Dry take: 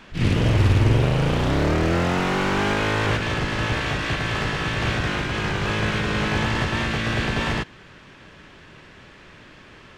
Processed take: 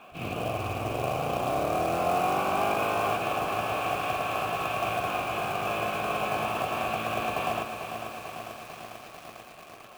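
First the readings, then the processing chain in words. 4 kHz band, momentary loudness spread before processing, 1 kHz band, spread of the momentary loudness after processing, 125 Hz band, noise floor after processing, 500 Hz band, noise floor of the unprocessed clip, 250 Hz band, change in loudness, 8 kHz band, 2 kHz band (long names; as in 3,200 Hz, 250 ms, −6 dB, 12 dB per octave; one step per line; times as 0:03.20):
−9.5 dB, 6 LU, +1.0 dB, 15 LU, −17.0 dB, −48 dBFS, −3.0 dB, −47 dBFS, −12.0 dB, −7.0 dB, −5.0 dB, −9.0 dB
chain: low-shelf EQ 260 Hz +8.5 dB
in parallel at −1 dB: downward compressor 10 to 1, threshold −23 dBFS, peak gain reduction 16.5 dB
on the sum: formant filter a
floating-point word with a short mantissa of 2 bits
feedback echo at a low word length 445 ms, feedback 80%, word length 8 bits, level −8 dB
level +3.5 dB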